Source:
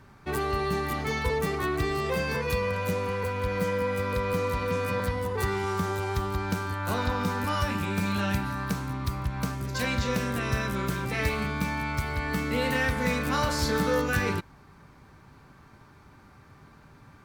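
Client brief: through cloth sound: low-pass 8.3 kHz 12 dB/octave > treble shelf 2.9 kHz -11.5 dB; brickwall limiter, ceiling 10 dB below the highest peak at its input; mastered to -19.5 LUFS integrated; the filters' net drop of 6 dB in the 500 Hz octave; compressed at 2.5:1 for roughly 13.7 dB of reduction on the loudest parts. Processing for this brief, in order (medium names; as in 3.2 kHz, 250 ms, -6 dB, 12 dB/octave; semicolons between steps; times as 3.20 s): peaking EQ 500 Hz -6.5 dB; compression 2.5:1, threshold -45 dBFS; peak limiter -36 dBFS; low-pass 8.3 kHz 12 dB/octave; treble shelf 2.9 kHz -11.5 dB; trim +27 dB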